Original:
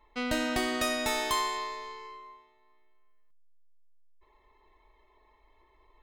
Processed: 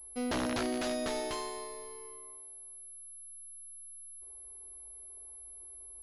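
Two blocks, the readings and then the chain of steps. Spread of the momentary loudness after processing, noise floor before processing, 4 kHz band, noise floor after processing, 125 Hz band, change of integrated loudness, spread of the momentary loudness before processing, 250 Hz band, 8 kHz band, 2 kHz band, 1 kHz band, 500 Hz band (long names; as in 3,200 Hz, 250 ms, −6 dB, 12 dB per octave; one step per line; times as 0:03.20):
13 LU, −66 dBFS, −8.0 dB, −49 dBFS, 0.0 dB, −9.0 dB, 16 LU, −1.5 dB, 0.0 dB, −9.0 dB, −8.0 dB, −1.5 dB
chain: flat-topped bell 1,900 Hz −13 dB 2.3 octaves
wrap-around overflow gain 24.5 dB
switching amplifier with a slow clock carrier 11,000 Hz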